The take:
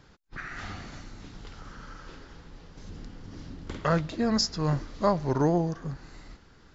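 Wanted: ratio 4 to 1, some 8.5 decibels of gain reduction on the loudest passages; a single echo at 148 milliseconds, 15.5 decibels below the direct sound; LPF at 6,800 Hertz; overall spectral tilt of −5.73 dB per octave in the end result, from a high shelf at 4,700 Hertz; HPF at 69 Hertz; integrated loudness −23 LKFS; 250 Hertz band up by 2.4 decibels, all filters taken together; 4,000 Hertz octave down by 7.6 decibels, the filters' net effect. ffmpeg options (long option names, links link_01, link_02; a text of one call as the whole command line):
ffmpeg -i in.wav -af "highpass=69,lowpass=6800,equalizer=frequency=250:width_type=o:gain=3.5,equalizer=frequency=4000:width_type=o:gain=-5,highshelf=frequency=4700:gain=-6,acompressor=threshold=-29dB:ratio=4,aecho=1:1:148:0.168,volume=13.5dB" out.wav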